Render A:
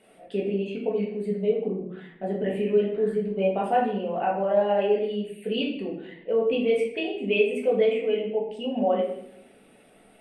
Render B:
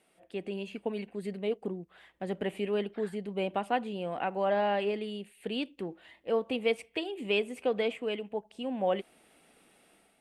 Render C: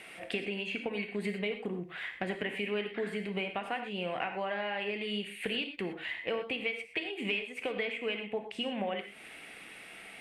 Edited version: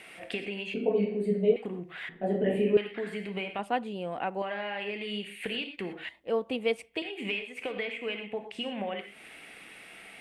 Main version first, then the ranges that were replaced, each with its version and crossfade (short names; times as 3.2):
C
0.74–1.56 from A
2.09–2.77 from A
3.59–4.42 from B
6.09–7.02 from B